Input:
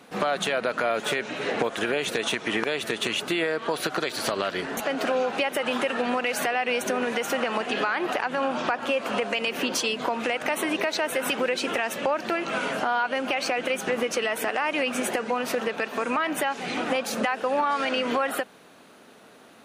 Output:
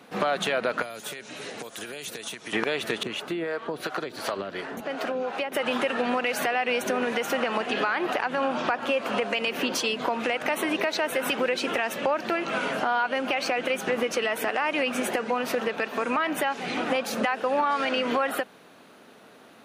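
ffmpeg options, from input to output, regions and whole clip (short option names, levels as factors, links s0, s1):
-filter_complex "[0:a]asettb=1/sr,asplit=3[s0][s1][s2];[s0]atrim=end=0.824[s3];[s1]atrim=start=0.82:end=2.53,asetpts=PTS-STARTPTS,afade=t=in:d=0.004:c=qsin,afade=t=out:st=1.706:d=0.004:c=qsin,highshelf=f=5600:g=11,acrossover=split=170|4700[s4][s5][s6];[s4]acompressor=threshold=0.002:ratio=4[s7];[s5]acompressor=threshold=0.0112:ratio=4[s8];[s6]acompressor=threshold=0.0158:ratio=4[s9];[s7][s8][s9]amix=inputs=3:normalize=0[s10];[s2]atrim=start=2.526[s11];[s3][s10]acrossfade=d=0.004:c1=hsin:c2=qsin[s12];[s12][s11]acrossfade=d=0.004:c1=qsin:c2=hsin,asettb=1/sr,asplit=3[s13][s14][s15];[s13]atrim=end=3.034[s16];[s14]atrim=start=3.03:end=5.52,asetpts=PTS-STARTPTS,afade=t=in:d=0.004:c=qsin,afade=t=out:st=2.486:d=0.004:c=qsin,acrossover=split=440[s17][s18];[s17]aeval=exprs='val(0)*(1-0.7/2+0.7/2*cos(2*PI*2.8*n/s))':c=same[s19];[s18]aeval=exprs='val(0)*(1-0.7/2-0.7/2*cos(2*PI*2.8*n/s))':c=same[s20];[s19][s20]amix=inputs=2:normalize=0,adynamicequalizer=threshold=0.00891:dfrequency=1900:dqfactor=0.7:tfrequency=1900:tqfactor=0.7:attack=5:release=100:ratio=0.375:range=2.5:mode=cutabove:tftype=highshelf[s21];[s15]atrim=start=5.516[s22];[s16][s21]acrossfade=d=0.004:c1=hsin:c2=qsin[s23];[s23][s22]acrossfade=d=0.004:c1=qsin:c2=hsin,highpass=52,equalizer=f=8100:t=o:w=1:g=-4"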